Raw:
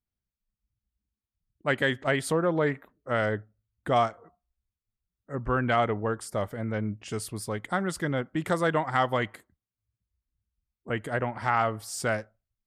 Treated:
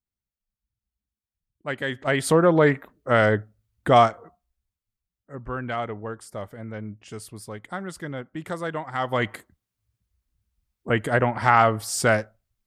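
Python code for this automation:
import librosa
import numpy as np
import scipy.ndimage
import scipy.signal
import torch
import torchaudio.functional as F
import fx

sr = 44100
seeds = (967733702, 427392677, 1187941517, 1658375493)

y = fx.gain(x, sr, db=fx.line((1.82, -3.5), (2.35, 8.0), (4.07, 8.0), (5.39, -4.5), (8.93, -4.5), (9.33, 8.0)))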